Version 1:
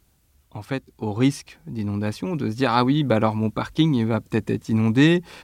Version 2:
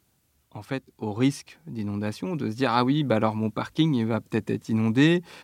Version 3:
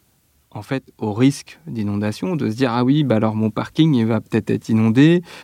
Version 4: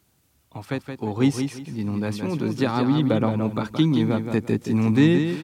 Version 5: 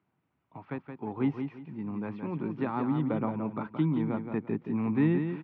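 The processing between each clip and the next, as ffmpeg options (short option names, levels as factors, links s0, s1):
-af "highpass=100,volume=0.708"
-filter_complex "[0:a]acrossover=split=460[s0][s1];[s1]acompressor=threshold=0.0251:ratio=2.5[s2];[s0][s2]amix=inputs=2:normalize=0,volume=2.51"
-af "aecho=1:1:172|344|516:0.447|0.121|0.0326,volume=0.562"
-af "highpass=150,equalizer=f=160:t=q:w=4:g=4,equalizer=f=510:t=q:w=4:g=-4,equalizer=f=980:t=q:w=4:g=4,equalizer=f=1700:t=q:w=4:g=-3,lowpass=f=2300:w=0.5412,lowpass=f=2300:w=1.3066,volume=0.398"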